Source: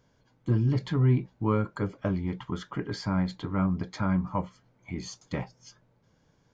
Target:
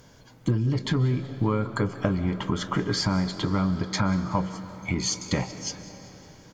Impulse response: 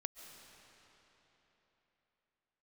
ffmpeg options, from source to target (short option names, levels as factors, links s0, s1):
-filter_complex "[0:a]aemphasis=mode=production:type=cd,acompressor=threshold=0.0158:ratio=5,asplit=5[s0][s1][s2][s3][s4];[s1]adelay=188,afreqshift=140,volume=0.0794[s5];[s2]adelay=376,afreqshift=280,volume=0.0437[s6];[s3]adelay=564,afreqshift=420,volume=0.024[s7];[s4]adelay=752,afreqshift=560,volume=0.0132[s8];[s0][s5][s6][s7][s8]amix=inputs=5:normalize=0,asplit=2[s9][s10];[1:a]atrim=start_sample=2205[s11];[s10][s11]afir=irnorm=-1:irlink=0,volume=1.33[s12];[s9][s12]amix=inputs=2:normalize=0,volume=2.51"